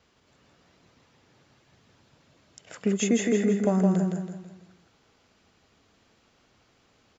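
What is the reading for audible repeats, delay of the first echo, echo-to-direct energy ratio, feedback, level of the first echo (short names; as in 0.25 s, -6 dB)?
5, 0.164 s, -2.5 dB, 41%, -3.5 dB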